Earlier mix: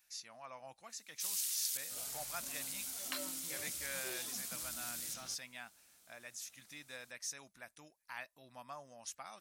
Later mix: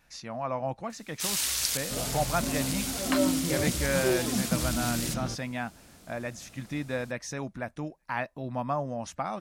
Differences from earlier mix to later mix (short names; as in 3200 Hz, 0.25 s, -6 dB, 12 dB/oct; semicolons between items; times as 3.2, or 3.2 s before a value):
first sound +9.0 dB; master: remove pre-emphasis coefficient 0.97